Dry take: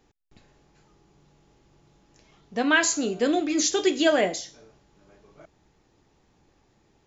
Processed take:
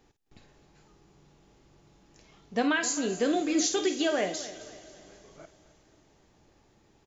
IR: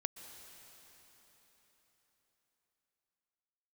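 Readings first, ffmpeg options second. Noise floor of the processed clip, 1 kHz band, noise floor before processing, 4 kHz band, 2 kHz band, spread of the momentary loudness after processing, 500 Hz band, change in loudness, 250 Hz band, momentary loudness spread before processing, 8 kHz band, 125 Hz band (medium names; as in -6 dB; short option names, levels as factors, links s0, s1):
-65 dBFS, -4.5 dB, -66 dBFS, -5.0 dB, -7.0 dB, 13 LU, -5.0 dB, -4.5 dB, -3.0 dB, 13 LU, no reading, -2.5 dB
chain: -filter_complex "[0:a]alimiter=limit=0.133:level=0:latency=1:release=421,aecho=1:1:263|526|789|1052:0.15|0.0628|0.0264|0.0111,asplit=2[s0][s1];[1:a]atrim=start_sample=2205,highshelf=f=3200:g=9.5,adelay=52[s2];[s1][s2]afir=irnorm=-1:irlink=0,volume=0.211[s3];[s0][s3]amix=inputs=2:normalize=0"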